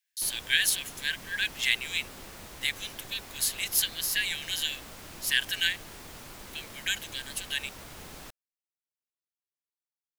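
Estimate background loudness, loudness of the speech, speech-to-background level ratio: -44.5 LUFS, -29.0 LUFS, 15.5 dB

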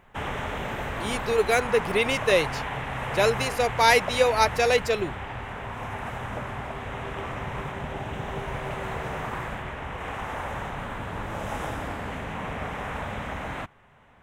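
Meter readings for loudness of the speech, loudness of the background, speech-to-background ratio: -23.5 LUFS, -33.0 LUFS, 9.5 dB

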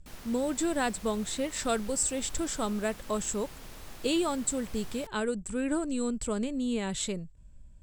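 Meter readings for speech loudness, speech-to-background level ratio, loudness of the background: -31.5 LUFS, 16.5 dB, -48.0 LUFS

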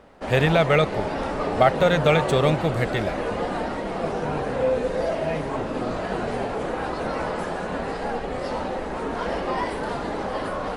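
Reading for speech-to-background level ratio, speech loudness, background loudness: 6.0 dB, -21.5 LUFS, -27.5 LUFS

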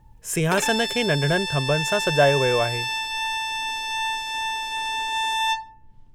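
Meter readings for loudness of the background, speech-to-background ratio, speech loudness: -25.0 LUFS, 2.5 dB, -22.5 LUFS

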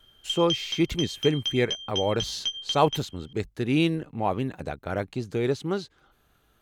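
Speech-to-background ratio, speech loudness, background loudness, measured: 3.5 dB, -27.5 LUFS, -31.0 LUFS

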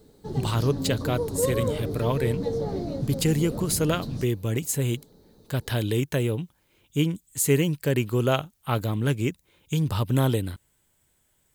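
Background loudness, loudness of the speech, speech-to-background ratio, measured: -31.0 LUFS, -26.5 LUFS, 4.5 dB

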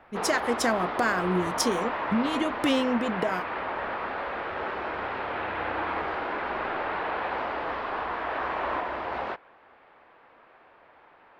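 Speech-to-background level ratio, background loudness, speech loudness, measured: 3.0 dB, -31.0 LUFS, -28.0 LUFS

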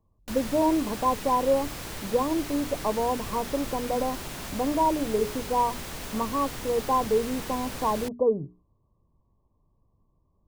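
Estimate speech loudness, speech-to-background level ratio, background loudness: -27.5 LUFS, 9.0 dB, -36.5 LUFS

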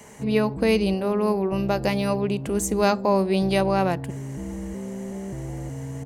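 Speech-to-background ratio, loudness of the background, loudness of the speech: 10.5 dB, -34.0 LUFS, -23.5 LUFS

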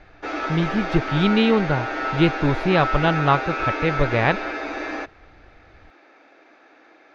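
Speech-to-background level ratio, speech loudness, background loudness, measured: 5.0 dB, -21.5 LUFS, -26.5 LUFS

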